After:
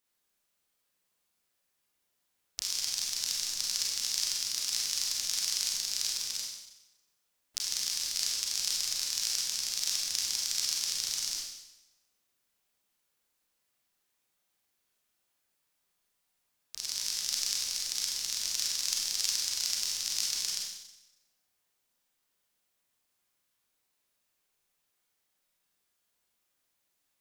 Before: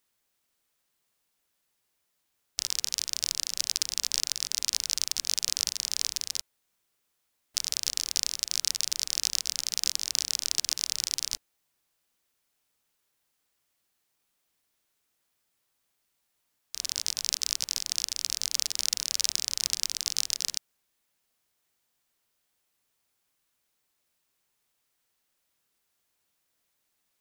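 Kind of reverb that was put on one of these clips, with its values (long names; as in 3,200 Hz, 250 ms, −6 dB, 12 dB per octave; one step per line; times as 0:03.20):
four-comb reverb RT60 0.93 s, combs from 31 ms, DRR −3 dB
level −6.5 dB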